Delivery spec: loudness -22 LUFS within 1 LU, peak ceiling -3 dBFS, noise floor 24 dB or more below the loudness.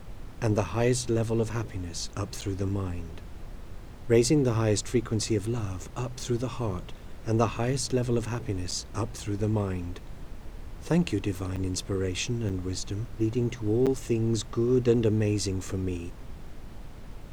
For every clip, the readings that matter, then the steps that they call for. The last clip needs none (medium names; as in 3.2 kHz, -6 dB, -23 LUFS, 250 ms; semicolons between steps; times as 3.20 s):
dropouts 5; longest dropout 7.3 ms; noise floor -43 dBFS; noise floor target -53 dBFS; loudness -28.5 LUFS; peak level -10.0 dBFS; loudness target -22.0 LUFS
-> interpolate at 2.41/8.71/11.56/12.49/13.86 s, 7.3 ms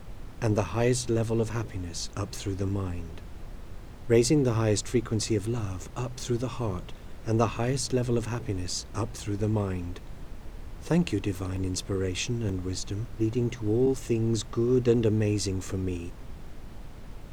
dropouts 0; noise floor -43 dBFS; noise floor target -53 dBFS
-> noise print and reduce 10 dB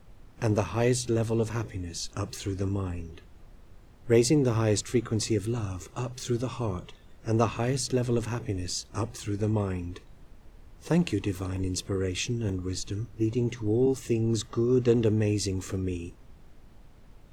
noise floor -53 dBFS; loudness -28.5 LUFS; peak level -10.0 dBFS; loudness target -22.0 LUFS
-> trim +6.5 dB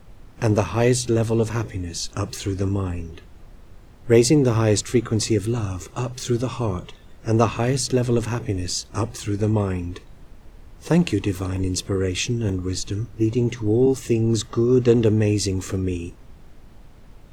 loudness -22.0 LUFS; peak level -3.5 dBFS; noise floor -46 dBFS